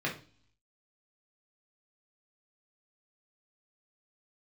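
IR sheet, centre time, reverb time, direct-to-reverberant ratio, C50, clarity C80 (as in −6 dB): 20 ms, non-exponential decay, −3.5 dB, 9.5 dB, 16.0 dB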